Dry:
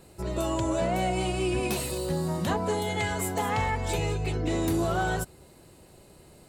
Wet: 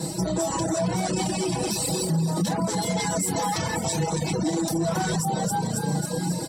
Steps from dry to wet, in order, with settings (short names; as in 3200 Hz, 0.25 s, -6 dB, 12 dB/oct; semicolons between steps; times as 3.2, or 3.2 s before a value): bell 70 Hz +7 dB 0.57 oct; frequency-shifting echo 0.271 s, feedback 51%, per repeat +31 Hz, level -10.5 dB; soft clip -28 dBFS, distortion -11 dB; compressor 3:1, threshold -42 dBFS, peak gain reduction 9 dB; bell 8500 Hz +15 dB 2.4 oct; comb 6.2 ms, depth 90%; reverb RT60 0.45 s, pre-delay 3 ms, DRR 2.5 dB; reverb removal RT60 0.52 s; limiter -22.5 dBFS, peak gain reduction 10.5 dB; reverb removal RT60 0.53 s; gain +6.5 dB